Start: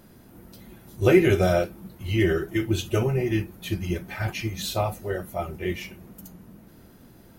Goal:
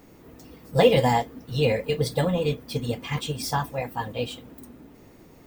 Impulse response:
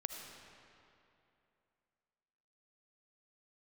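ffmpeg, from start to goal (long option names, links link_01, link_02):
-af "asetrate=59535,aresample=44100"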